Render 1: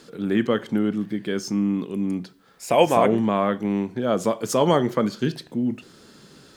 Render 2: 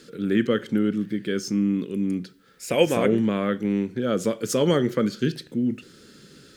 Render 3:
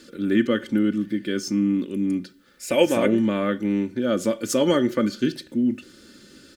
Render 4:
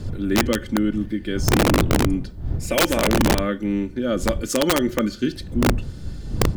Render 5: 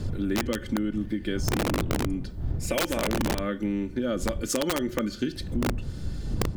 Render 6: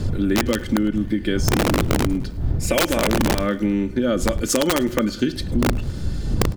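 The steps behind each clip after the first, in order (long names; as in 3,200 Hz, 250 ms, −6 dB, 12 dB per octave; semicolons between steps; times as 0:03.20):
flat-topped bell 840 Hz −11.5 dB 1 octave
comb filter 3.4 ms, depth 59%
wind on the microphone 100 Hz −24 dBFS; wrap-around overflow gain 10.5 dB
downward compressor, threshold −24 dBFS, peak gain reduction 10 dB
repeating echo 105 ms, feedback 54%, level −22 dB; level +7.5 dB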